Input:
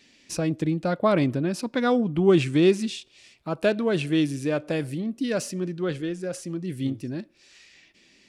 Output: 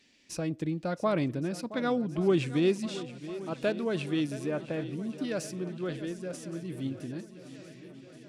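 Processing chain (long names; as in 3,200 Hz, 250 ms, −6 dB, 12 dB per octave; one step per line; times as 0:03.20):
0:04.46–0:05.11: low-pass filter 2,400 Hz
on a send: feedback echo with a long and a short gap by turns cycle 1,119 ms, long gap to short 1.5 to 1, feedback 55%, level −15 dB
on the sum: level −7 dB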